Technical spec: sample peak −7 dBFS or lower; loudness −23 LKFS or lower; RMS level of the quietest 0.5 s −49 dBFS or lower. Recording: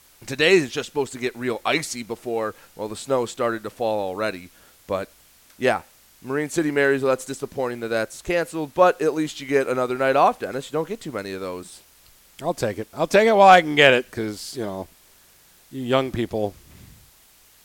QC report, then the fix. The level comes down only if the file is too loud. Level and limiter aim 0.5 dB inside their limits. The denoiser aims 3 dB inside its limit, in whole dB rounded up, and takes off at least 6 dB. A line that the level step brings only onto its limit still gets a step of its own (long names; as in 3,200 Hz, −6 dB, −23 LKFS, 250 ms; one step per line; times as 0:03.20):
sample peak −2.5 dBFS: out of spec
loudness −22.0 LKFS: out of spec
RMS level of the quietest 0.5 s −54 dBFS: in spec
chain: level −1.5 dB
brickwall limiter −7.5 dBFS